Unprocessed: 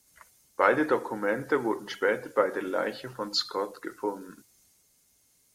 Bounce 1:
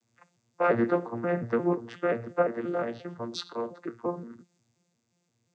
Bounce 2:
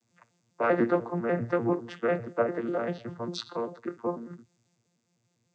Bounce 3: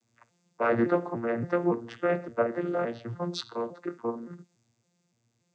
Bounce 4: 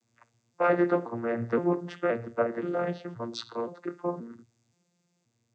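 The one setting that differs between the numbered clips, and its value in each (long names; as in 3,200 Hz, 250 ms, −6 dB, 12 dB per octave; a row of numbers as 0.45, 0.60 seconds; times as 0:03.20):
vocoder with an arpeggio as carrier, a note every: 176, 99, 284, 524 milliseconds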